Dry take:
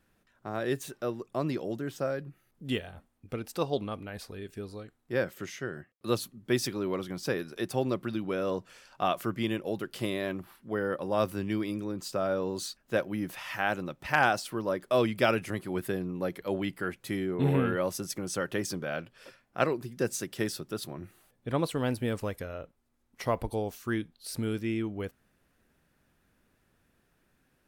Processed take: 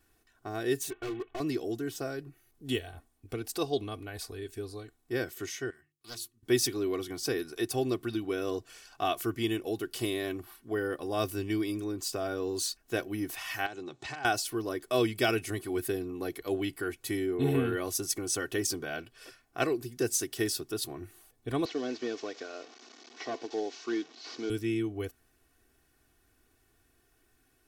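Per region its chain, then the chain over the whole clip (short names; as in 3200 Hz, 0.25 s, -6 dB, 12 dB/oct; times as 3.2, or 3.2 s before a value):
0.9–1.4 CVSD 16 kbps + comb 2.7 ms, depth 79% + overloaded stage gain 34 dB
5.7–6.43 passive tone stack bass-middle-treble 5-5-5 + notches 50/100/150/200/250/300/350/400 Hz + Doppler distortion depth 0.6 ms
13.66–14.25 compressor, threshold -37 dBFS + careless resampling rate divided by 2×, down none, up hold + speaker cabinet 110–7700 Hz, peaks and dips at 130 Hz +6 dB, 380 Hz +6 dB, 850 Hz +5 dB, 3900 Hz +7 dB, 7100 Hz +5 dB
21.65–24.5 delta modulation 32 kbps, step -45 dBFS + HPF 250 Hz 24 dB/oct
whole clip: tone controls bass +1 dB, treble +7 dB; comb 2.7 ms, depth 76%; dynamic EQ 1000 Hz, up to -5 dB, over -41 dBFS, Q 1.2; gain -2 dB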